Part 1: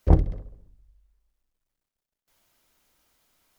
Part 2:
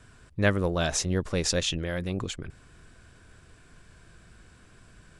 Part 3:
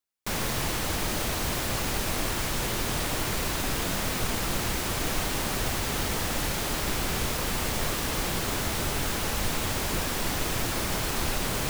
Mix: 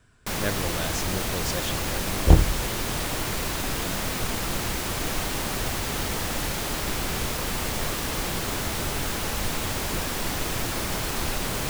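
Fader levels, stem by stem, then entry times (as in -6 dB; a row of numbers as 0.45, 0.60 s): +2.5, -6.0, +0.5 dB; 2.20, 0.00, 0.00 s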